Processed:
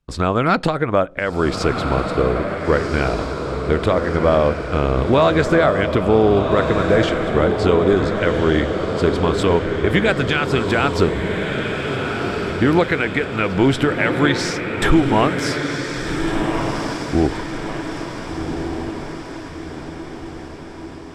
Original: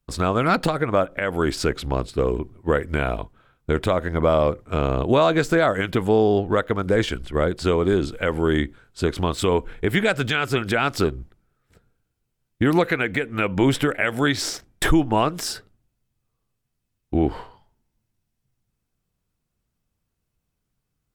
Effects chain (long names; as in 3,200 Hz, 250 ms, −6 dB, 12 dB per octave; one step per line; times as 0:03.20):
high-frequency loss of the air 57 metres
feedback delay with all-pass diffusion 1,457 ms, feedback 54%, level −4.5 dB
level +3 dB